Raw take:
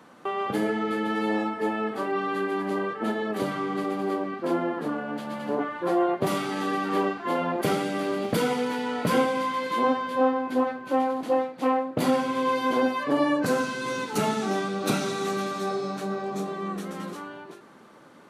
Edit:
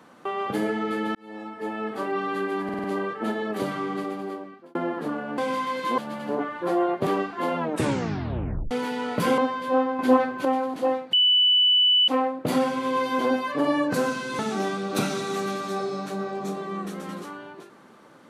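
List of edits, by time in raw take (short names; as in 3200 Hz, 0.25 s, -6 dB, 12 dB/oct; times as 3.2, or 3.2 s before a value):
1.15–2.02 fade in
2.64 stutter 0.05 s, 5 plays
3.68–4.55 fade out
6.27–6.94 cut
7.45 tape stop 1.13 s
9.25–9.85 move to 5.18
10.46–10.92 gain +6 dB
11.6 add tone 2980 Hz -15.5 dBFS 0.95 s
13.91–14.3 cut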